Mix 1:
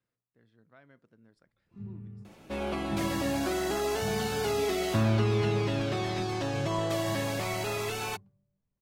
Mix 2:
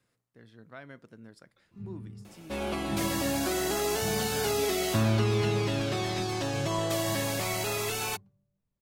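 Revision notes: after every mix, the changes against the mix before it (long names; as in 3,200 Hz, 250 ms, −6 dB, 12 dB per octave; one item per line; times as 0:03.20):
speech +11.0 dB
master: add high-shelf EQ 5,100 Hz +9.5 dB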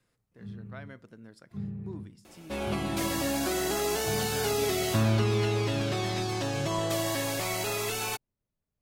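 speech: send on
first sound: entry −1.35 s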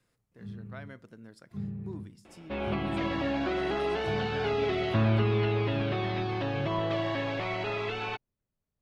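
second sound: add low-pass filter 3,300 Hz 24 dB per octave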